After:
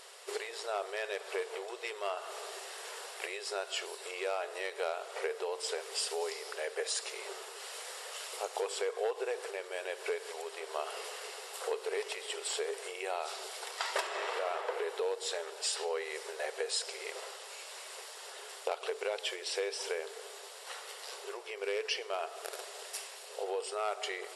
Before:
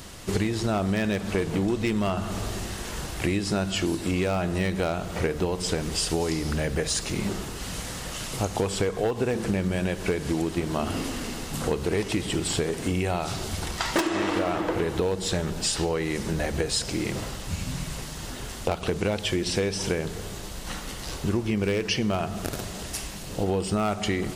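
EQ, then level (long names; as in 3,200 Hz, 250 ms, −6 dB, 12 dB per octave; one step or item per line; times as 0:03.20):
linear-phase brick-wall band-pass 380–12,000 Hz
notch filter 6,300 Hz, Q 9.2
−7.0 dB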